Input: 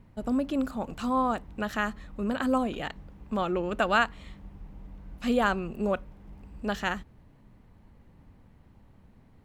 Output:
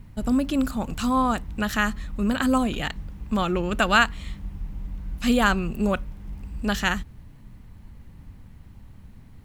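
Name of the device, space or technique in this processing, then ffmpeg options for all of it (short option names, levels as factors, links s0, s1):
smiley-face EQ: -af "lowshelf=f=140:g=5.5,equalizer=f=540:t=o:w=2:g=-7,highshelf=f=5100:g=7,volume=2.37"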